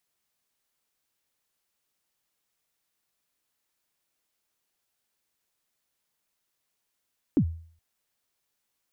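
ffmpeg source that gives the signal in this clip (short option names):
-f lavfi -i "aevalsrc='0.178*pow(10,-3*t/0.5)*sin(2*PI*(340*0.076/log(82/340)*(exp(log(82/340)*min(t,0.076)/0.076)-1)+82*max(t-0.076,0)))':d=0.42:s=44100"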